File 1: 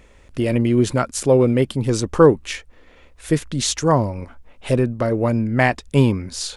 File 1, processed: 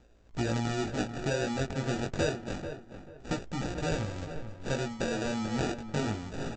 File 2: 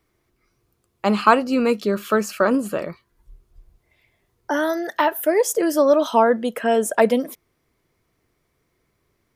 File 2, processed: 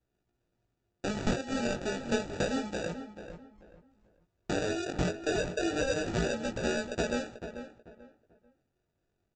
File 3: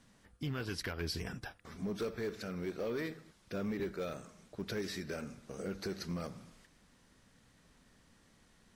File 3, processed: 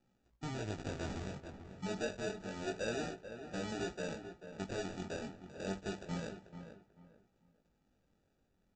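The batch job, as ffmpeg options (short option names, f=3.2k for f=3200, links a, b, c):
-filter_complex "[0:a]lowpass=f=5.7k:w=0.5412,lowpass=f=5.7k:w=1.3066,agate=range=-10dB:threshold=-42dB:ratio=16:detection=peak,acrossover=split=1800|3600[a][b][c];[a]acompressor=threshold=-30dB:ratio=4[d];[b]acompressor=threshold=-35dB:ratio=4[e];[c]acompressor=threshold=-41dB:ratio=4[f];[d][e][f]amix=inputs=3:normalize=0,aresample=16000,acrusher=samples=15:mix=1:aa=0.000001,aresample=44100,flanger=delay=16.5:depth=5.5:speed=0.29,asplit=2[g][h];[h]adelay=439,lowpass=f=2k:p=1,volume=-9.5dB,asplit=2[i][j];[j]adelay=439,lowpass=f=2k:p=1,volume=0.28,asplit=2[k][l];[l]adelay=439,lowpass=f=2k:p=1,volume=0.28[m];[i][k][m]amix=inputs=3:normalize=0[n];[g][n]amix=inputs=2:normalize=0,volume=1.5dB"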